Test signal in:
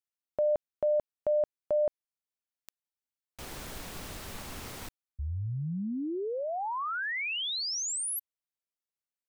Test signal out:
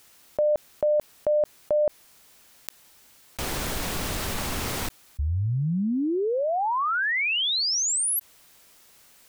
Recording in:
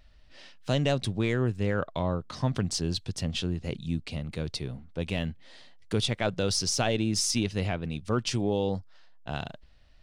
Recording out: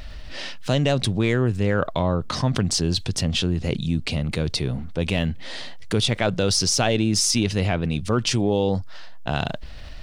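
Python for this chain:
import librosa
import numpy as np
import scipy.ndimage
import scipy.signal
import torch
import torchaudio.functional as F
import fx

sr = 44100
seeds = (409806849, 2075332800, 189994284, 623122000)

y = fx.env_flatten(x, sr, amount_pct=50)
y = y * librosa.db_to_amplitude(4.5)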